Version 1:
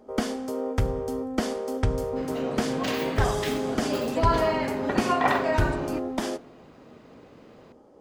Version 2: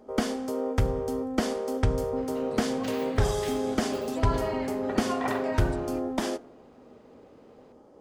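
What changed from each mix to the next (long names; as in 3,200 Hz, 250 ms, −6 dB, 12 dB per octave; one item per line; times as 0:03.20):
second sound −8.5 dB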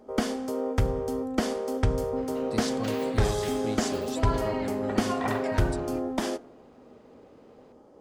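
speech +9.5 dB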